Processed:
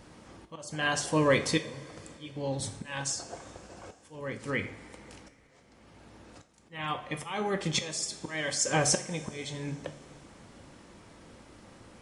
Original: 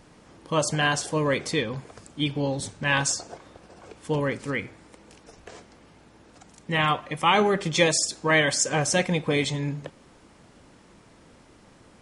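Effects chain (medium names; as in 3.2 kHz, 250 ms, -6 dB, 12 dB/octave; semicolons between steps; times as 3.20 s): slow attack 645 ms; two-slope reverb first 0.41 s, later 3.4 s, from -18 dB, DRR 7 dB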